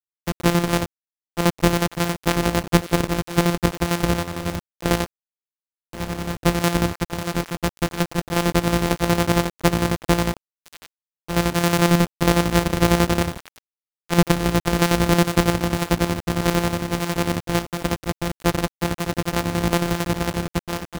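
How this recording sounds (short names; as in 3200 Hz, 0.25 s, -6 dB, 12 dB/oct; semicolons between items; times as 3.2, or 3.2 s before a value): a buzz of ramps at a fixed pitch in blocks of 256 samples; chopped level 11 Hz, depth 60%, duty 50%; a quantiser's noise floor 6-bit, dither none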